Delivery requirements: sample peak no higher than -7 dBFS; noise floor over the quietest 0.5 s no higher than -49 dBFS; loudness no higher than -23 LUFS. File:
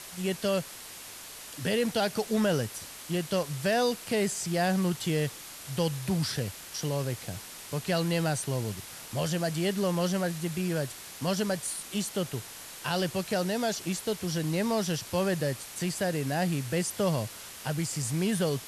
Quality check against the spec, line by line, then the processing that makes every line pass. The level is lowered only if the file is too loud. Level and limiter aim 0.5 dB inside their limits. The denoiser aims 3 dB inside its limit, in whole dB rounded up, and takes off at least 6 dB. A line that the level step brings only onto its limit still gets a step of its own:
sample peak -15.5 dBFS: OK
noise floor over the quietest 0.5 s -45 dBFS: fail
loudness -30.5 LUFS: OK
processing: denoiser 7 dB, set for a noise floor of -45 dBFS

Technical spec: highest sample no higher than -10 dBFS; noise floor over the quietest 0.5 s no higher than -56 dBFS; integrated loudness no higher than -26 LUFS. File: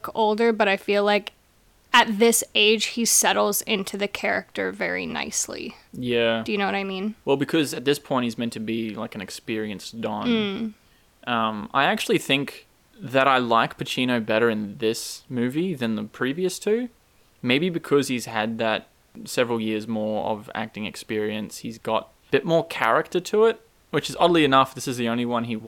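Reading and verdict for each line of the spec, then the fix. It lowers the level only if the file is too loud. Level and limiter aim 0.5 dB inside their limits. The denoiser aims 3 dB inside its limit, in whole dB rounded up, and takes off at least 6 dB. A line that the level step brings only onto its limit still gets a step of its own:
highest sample -5.0 dBFS: fail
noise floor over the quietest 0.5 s -59 dBFS: OK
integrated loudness -23.0 LUFS: fail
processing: gain -3.5 dB; limiter -10.5 dBFS

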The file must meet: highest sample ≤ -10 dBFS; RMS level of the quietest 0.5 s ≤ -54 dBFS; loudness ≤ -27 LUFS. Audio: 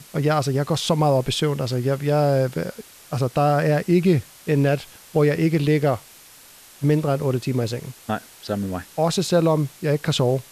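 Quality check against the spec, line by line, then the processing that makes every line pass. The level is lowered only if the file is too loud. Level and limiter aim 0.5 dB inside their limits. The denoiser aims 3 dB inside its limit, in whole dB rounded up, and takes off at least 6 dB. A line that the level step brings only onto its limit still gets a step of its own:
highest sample -6.5 dBFS: fail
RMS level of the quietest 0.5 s -47 dBFS: fail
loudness -22.0 LUFS: fail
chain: denoiser 6 dB, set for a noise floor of -47 dBFS; gain -5.5 dB

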